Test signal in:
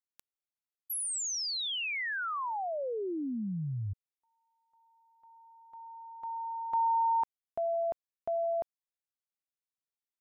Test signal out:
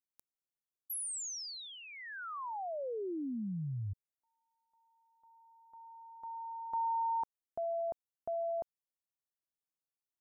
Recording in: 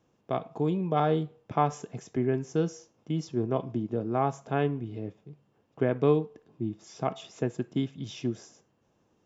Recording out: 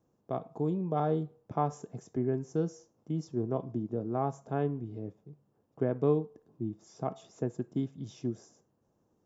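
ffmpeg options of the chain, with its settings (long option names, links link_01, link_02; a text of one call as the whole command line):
ffmpeg -i in.wav -af "equalizer=frequency=2700:width=0.81:gain=-13,volume=-3dB" out.wav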